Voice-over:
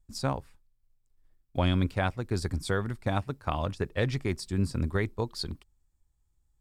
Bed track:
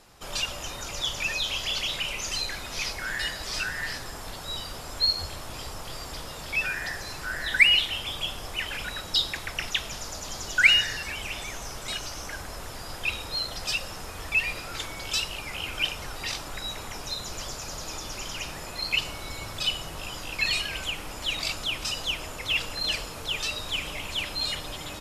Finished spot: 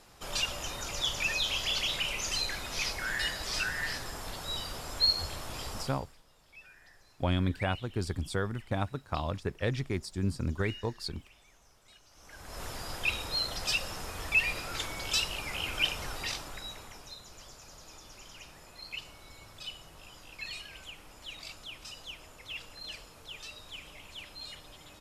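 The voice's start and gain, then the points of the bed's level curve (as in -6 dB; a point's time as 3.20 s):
5.65 s, -3.0 dB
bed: 5.82 s -2 dB
6.15 s -26 dB
12.06 s -26 dB
12.62 s -1.5 dB
16.13 s -1.5 dB
17.23 s -15 dB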